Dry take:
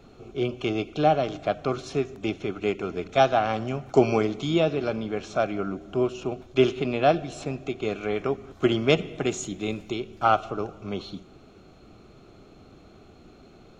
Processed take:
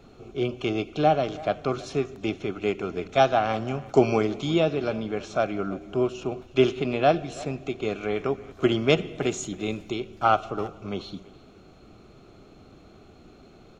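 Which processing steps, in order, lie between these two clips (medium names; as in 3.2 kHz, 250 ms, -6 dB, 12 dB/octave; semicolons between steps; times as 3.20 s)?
speakerphone echo 330 ms, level -19 dB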